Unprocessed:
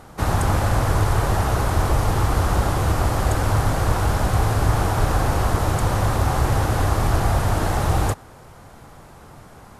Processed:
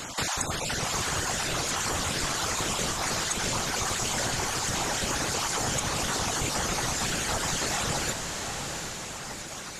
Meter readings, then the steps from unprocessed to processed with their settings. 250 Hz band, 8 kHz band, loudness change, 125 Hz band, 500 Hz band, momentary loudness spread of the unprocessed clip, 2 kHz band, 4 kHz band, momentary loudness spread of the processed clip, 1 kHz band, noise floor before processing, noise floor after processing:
−8.5 dB, +6.5 dB, −7.0 dB, −17.0 dB, −8.5 dB, 1 LU, −1.5 dB, +5.0 dB, 5 LU, −8.0 dB, −45 dBFS, −38 dBFS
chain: time-frequency cells dropped at random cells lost 24%
meter weighting curve D
reverb reduction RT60 1.9 s
parametric band 6,900 Hz +11 dB 0.67 octaves
downward compressor 3 to 1, threshold −37 dBFS, peak gain reduction 15.5 dB
random phases in short frames
feedback delay with all-pass diffusion 753 ms, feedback 46%, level −4.5 dB
level +5.5 dB

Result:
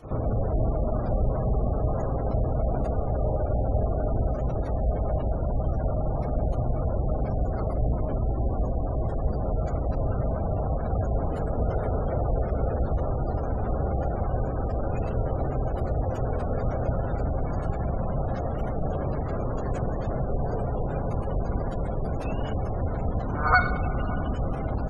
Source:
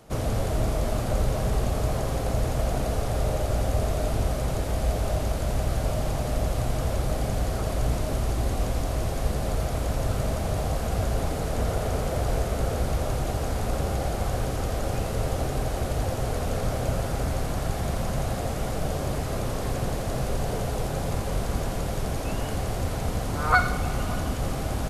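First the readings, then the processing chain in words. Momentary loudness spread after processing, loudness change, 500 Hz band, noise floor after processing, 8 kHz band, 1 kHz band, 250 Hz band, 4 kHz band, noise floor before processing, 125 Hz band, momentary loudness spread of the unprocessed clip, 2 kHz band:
3 LU, 0.0 dB, 0.0 dB, −30 dBFS, below −25 dB, −0.5 dB, +0.5 dB, below −15 dB, −30 dBFS, 0.0 dB, 3 LU, −1.5 dB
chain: backwards echo 75 ms −12 dB
gate on every frequency bin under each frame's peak −25 dB strong

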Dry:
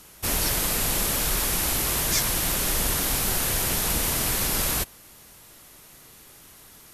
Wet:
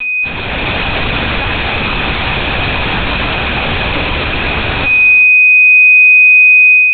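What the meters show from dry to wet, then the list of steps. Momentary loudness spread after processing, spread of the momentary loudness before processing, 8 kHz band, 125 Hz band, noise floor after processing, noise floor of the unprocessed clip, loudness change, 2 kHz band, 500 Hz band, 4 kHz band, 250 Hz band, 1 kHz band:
12 LU, 2 LU, below −40 dB, +13.0 dB, −17 dBFS, −50 dBFS, +16.0 dB, +28.0 dB, +13.0 dB, +10.5 dB, +12.5 dB, +14.5 dB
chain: high-pass filter 210 Hz 6 dB per octave
on a send: feedback echo with a high-pass in the loop 155 ms, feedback 29%, high-pass 670 Hz, level −14 dB
on the sum: chorus effect 1.1 Hz, delay 19.5 ms, depth 7.5 ms
low-shelf EQ 430 Hz +3 dB
steady tone 2,500 Hz −36 dBFS
in parallel at +1 dB: brickwall limiter −22 dBFS, peak gain reduction 8.5 dB
on the sum: fuzz pedal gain 50 dB, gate −56 dBFS
automatic gain control gain up to 11.5 dB
linear-prediction vocoder at 8 kHz pitch kept
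reverb whose tail is shaped and stops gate 480 ms falling, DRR 8 dB
level −4.5 dB

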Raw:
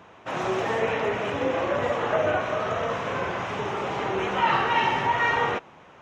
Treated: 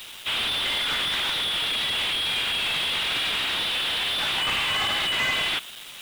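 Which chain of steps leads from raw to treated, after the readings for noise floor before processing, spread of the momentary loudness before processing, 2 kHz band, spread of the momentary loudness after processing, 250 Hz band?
−50 dBFS, 7 LU, +2.0 dB, 2 LU, −9.5 dB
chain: low-shelf EQ 68 Hz +11.5 dB
brickwall limiter −18.5 dBFS, peak gain reduction 8 dB
voice inversion scrambler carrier 3,900 Hz
bit reduction 8 bits
slew-rate limiting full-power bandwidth 76 Hz
level +7.5 dB

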